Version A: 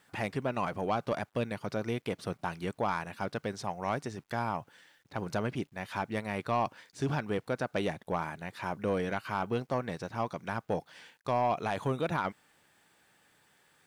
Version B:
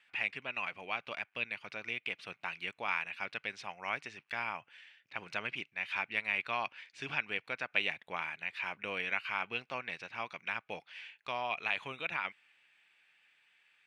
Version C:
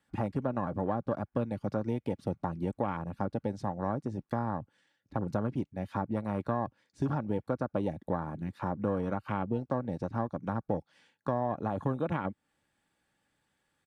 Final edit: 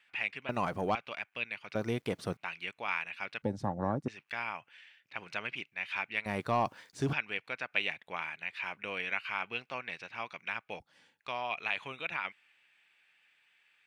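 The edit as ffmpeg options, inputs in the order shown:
-filter_complex "[0:a]asplit=3[s0][s1][s2];[2:a]asplit=2[s3][s4];[1:a]asplit=6[s5][s6][s7][s8][s9][s10];[s5]atrim=end=0.492[s11];[s0]atrim=start=0.488:end=0.952[s12];[s6]atrim=start=0.948:end=1.752[s13];[s1]atrim=start=1.748:end=2.372[s14];[s7]atrim=start=2.368:end=3.422[s15];[s3]atrim=start=3.418:end=4.082[s16];[s8]atrim=start=4.078:end=6.262[s17];[s2]atrim=start=6.258:end=7.132[s18];[s9]atrim=start=7.128:end=10.802[s19];[s4]atrim=start=10.798:end=11.202[s20];[s10]atrim=start=11.198[s21];[s11][s12]acrossfade=d=0.004:c1=hsin:c2=hsin[s22];[s22][s13]acrossfade=d=0.004:c1=hsin:c2=hsin[s23];[s23][s14]acrossfade=d=0.004:c1=hsin:c2=hsin[s24];[s24][s15]acrossfade=d=0.004:c1=hsin:c2=hsin[s25];[s25][s16]acrossfade=d=0.004:c1=hsin:c2=hsin[s26];[s26][s17]acrossfade=d=0.004:c1=hsin:c2=hsin[s27];[s27][s18]acrossfade=d=0.004:c1=hsin:c2=hsin[s28];[s28][s19]acrossfade=d=0.004:c1=hsin:c2=hsin[s29];[s29][s20]acrossfade=d=0.004:c1=hsin:c2=hsin[s30];[s30][s21]acrossfade=d=0.004:c1=hsin:c2=hsin"

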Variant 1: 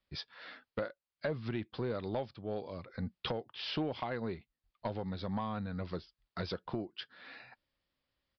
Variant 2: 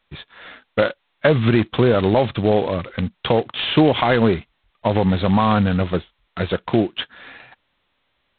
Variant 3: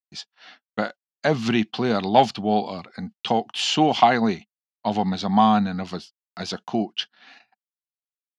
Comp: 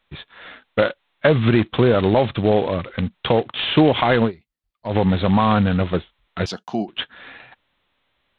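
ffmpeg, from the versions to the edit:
-filter_complex "[1:a]asplit=3[s0][s1][s2];[s0]atrim=end=4.32[s3];[0:a]atrim=start=4.22:end=4.95[s4];[s1]atrim=start=4.85:end=6.462[s5];[2:a]atrim=start=6.458:end=6.882[s6];[s2]atrim=start=6.878[s7];[s3][s4]acrossfade=d=0.1:c1=tri:c2=tri[s8];[s8][s5]acrossfade=d=0.1:c1=tri:c2=tri[s9];[s9][s6]acrossfade=d=0.004:c1=hsin:c2=hsin[s10];[s10][s7]acrossfade=d=0.004:c1=hsin:c2=hsin"

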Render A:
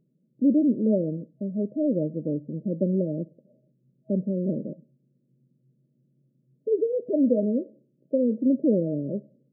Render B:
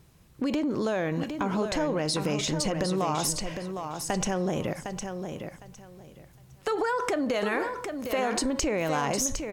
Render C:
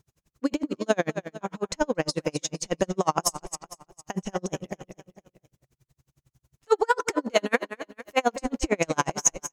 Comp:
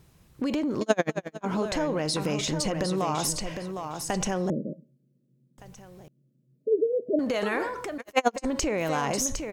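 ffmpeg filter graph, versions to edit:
-filter_complex "[2:a]asplit=2[s0][s1];[0:a]asplit=2[s2][s3];[1:a]asplit=5[s4][s5][s6][s7][s8];[s4]atrim=end=0.812[s9];[s0]atrim=start=0.808:end=1.452[s10];[s5]atrim=start=1.448:end=4.502[s11];[s2]atrim=start=4.498:end=5.582[s12];[s6]atrim=start=5.578:end=6.082[s13];[s3]atrim=start=6.078:end=7.192[s14];[s7]atrim=start=7.188:end=7.982[s15];[s1]atrim=start=7.978:end=8.452[s16];[s8]atrim=start=8.448[s17];[s9][s10]acrossfade=d=0.004:c1=hsin:c2=hsin[s18];[s18][s11]acrossfade=d=0.004:c1=hsin:c2=hsin[s19];[s19][s12]acrossfade=d=0.004:c1=hsin:c2=hsin[s20];[s20][s13]acrossfade=d=0.004:c1=hsin:c2=hsin[s21];[s21][s14]acrossfade=d=0.004:c1=hsin:c2=hsin[s22];[s22][s15]acrossfade=d=0.004:c1=hsin:c2=hsin[s23];[s23][s16]acrossfade=d=0.004:c1=hsin:c2=hsin[s24];[s24][s17]acrossfade=d=0.004:c1=hsin:c2=hsin"

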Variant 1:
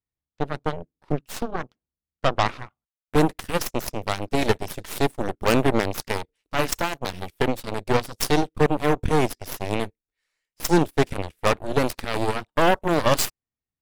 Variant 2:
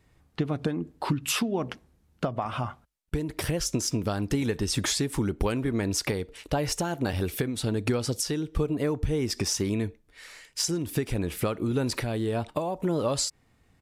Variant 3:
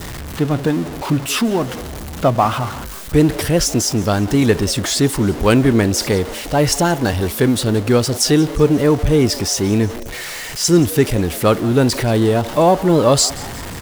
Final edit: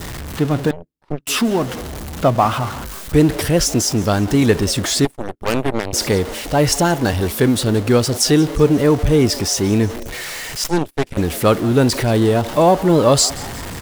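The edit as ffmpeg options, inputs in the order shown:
-filter_complex "[0:a]asplit=3[s0][s1][s2];[2:a]asplit=4[s3][s4][s5][s6];[s3]atrim=end=0.712[s7];[s0]atrim=start=0.708:end=1.272[s8];[s4]atrim=start=1.268:end=5.052[s9];[s1]atrim=start=5.048:end=5.932[s10];[s5]atrim=start=5.928:end=10.642[s11];[s2]atrim=start=10.638:end=11.172[s12];[s6]atrim=start=11.168[s13];[s7][s8]acrossfade=d=0.004:c1=hsin:c2=hsin[s14];[s14][s9]acrossfade=d=0.004:c1=hsin:c2=hsin[s15];[s15][s10]acrossfade=d=0.004:c1=hsin:c2=hsin[s16];[s16][s11]acrossfade=d=0.004:c1=hsin:c2=hsin[s17];[s17][s12]acrossfade=d=0.004:c1=hsin:c2=hsin[s18];[s18][s13]acrossfade=d=0.004:c1=hsin:c2=hsin"

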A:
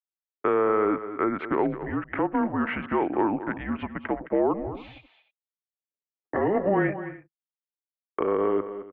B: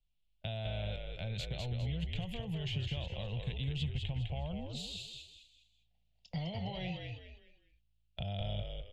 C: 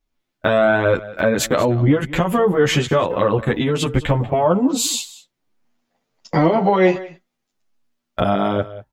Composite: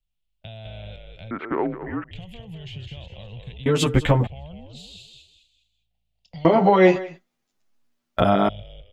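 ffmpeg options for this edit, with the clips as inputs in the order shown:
-filter_complex "[2:a]asplit=2[s0][s1];[1:a]asplit=4[s2][s3][s4][s5];[s2]atrim=end=1.312[s6];[0:a]atrim=start=1.308:end=2.112[s7];[s3]atrim=start=2.108:end=3.662[s8];[s0]atrim=start=3.658:end=4.272[s9];[s4]atrim=start=4.268:end=6.452[s10];[s1]atrim=start=6.448:end=8.492[s11];[s5]atrim=start=8.488[s12];[s6][s7]acrossfade=d=0.004:c1=hsin:c2=hsin[s13];[s13][s8]acrossfade=d=0.004:c1=hsin:c2=hsin[s14];[s14][s9]acrossfade=d=0.004:c1=hsin:c2=hsin[s15];[s15][s10]acrossfade=d=0.004:c1=hsin:c2=hsin[s16];[s16][s11]acrossfade=d=0.004:c1=hsin:c2=hsin[s17];[s17][s12]acrossfade=d=0.004:c1=hsin:c2=hsin"

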